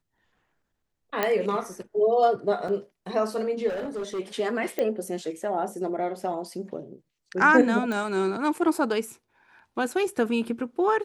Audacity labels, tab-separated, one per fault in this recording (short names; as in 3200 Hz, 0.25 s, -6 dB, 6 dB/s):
1.230000	1.230000	pop -10 dBFS
2.680000	2.680000	gap 3.9 ms
3.680000	4.200000	clipped -28 dBFS
4.790000	4.790000	pop -15 dBFS
7.920000	7.920000	pop